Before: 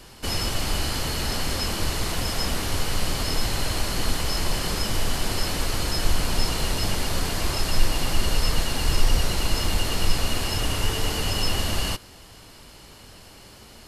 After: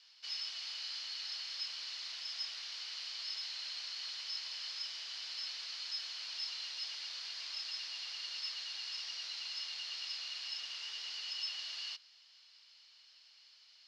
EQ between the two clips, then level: ladder band-pass 5800 Hz, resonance 45%; air absorption 250 m; high shelf 4100 Hz -9.5 dB; +14.0 dB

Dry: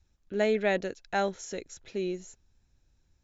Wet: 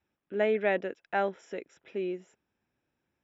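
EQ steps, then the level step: polynomial smoothing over 25 samples; HPF 230 Hz 12 dB/oct; 0.0 dB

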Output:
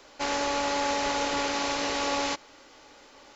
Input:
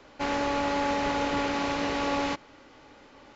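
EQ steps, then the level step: tone controls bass -14 dB, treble +11 dB; low shelf 100 Hz +11.5 dB; 0.0 dB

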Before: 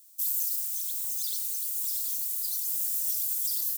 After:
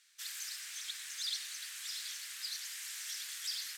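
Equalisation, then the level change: resonant high-pass 1700 Hz, resonance Q 2.7; LPF 3000 Hz 12 dB/oct; +9.5 dB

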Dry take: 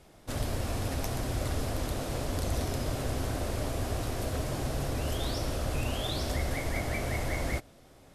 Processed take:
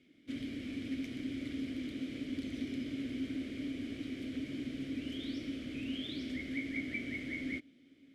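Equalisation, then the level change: vowel filter i; +6.0 dB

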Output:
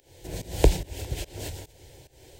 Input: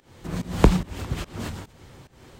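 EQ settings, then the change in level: high shelf 7500 Hz +7.5 dB; fixed phaser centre 500 Hz, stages 4; 0.0 dB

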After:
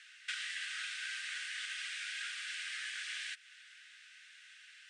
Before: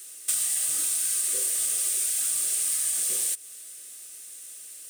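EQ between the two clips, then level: elliptic high-pass 1500 Hz, stop band 40 dB; LPF 2000 Hz 12 dB/oct; air absorption 100 m; +11.0 dB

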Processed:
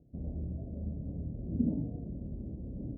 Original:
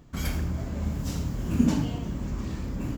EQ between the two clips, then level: HPF 47 Hz; steep low-pass 660 Hz 48 dB/oct; air absorption 420 m; -7.5 dB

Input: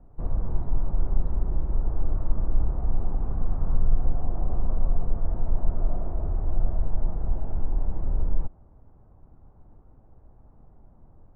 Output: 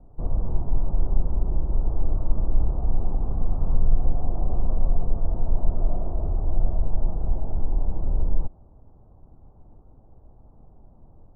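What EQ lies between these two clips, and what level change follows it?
Chebyshev low-pass 840 Hz, order 2; +3.0 dB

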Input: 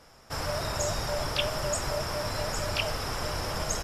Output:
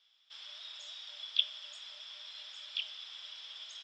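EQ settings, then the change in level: band-pass 3400 Hz, Q 15; air absorption 120 m; tilt +3 dB/oct; +4.5 dB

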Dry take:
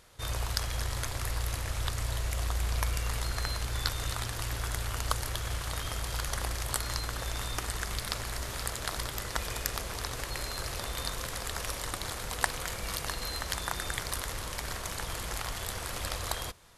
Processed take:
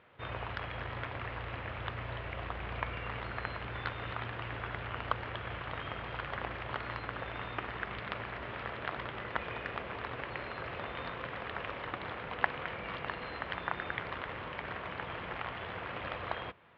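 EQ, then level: HPF 130 Hz 12 dB/oct; steep low-pass 2900 Hz 36 dB/oct; 0.0 dB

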